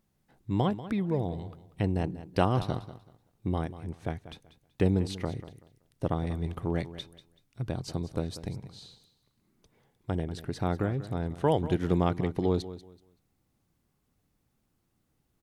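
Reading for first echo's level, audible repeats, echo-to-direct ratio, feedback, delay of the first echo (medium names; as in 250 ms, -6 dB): -14.5 dB, 2, -14.5 dB, 24%, 190 ms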